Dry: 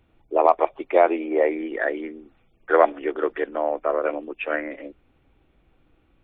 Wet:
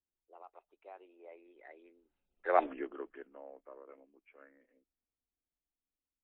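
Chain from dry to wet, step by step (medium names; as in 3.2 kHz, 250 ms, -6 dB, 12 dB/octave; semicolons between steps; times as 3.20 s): Doppler pass-by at 2.66 s, 31 m/s, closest 1.7 m; peaking EQ 120 Hz -12.5 dB 0.31 oct; trim -4.5 dB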